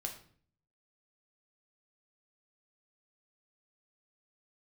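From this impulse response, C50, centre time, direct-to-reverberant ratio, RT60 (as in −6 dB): 9.0 dB, 16 ms, 2.0 dB, 0.50 s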